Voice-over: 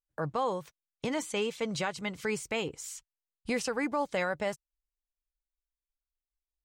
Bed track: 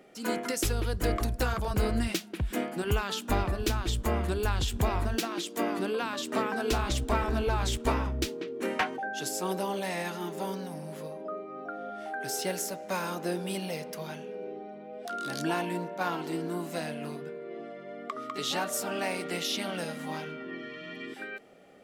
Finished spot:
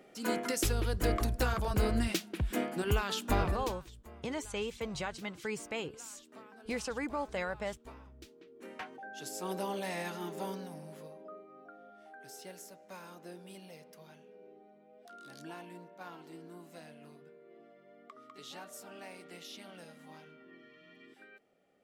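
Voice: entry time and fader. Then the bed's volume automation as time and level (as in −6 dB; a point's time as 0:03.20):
3.20 s, −5.5 dB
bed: 0:03.53 −2 dB
0:03.87 −23.5 dB
0:08.18 −23.5 dB
0:09.62 −4.5 dB
0:10.46 −4.5 dB
0:11.91 −16.5 dB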